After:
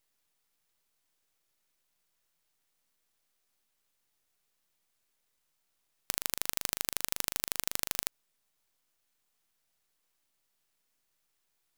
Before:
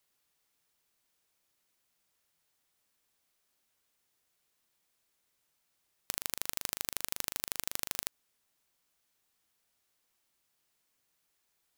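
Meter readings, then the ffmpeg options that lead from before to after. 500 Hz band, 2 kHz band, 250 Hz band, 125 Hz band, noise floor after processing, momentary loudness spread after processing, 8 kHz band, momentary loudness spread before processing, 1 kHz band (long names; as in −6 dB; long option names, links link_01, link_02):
+3.0 dB, +3.0 dB, +3.0 dB, +3.0 dB, −78 dBFS, 3 LU, +3.0 dB, 3 LU, +3.0 dB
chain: -af "aeval=exprs='max(val(0),0)':channel_layout=same,volume=3dB"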